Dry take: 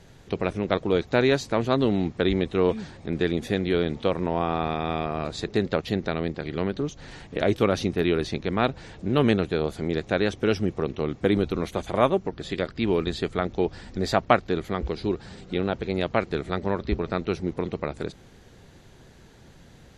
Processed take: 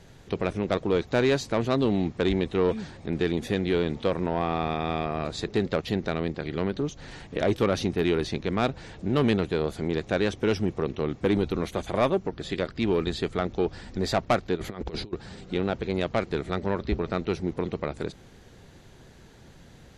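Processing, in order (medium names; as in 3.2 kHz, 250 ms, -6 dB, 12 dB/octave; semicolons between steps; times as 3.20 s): 14.55–15.13 s: compressor with a negative ratio -33 dBFS, ratio -0.5; saturation -14 dBFS, distortion -16 dB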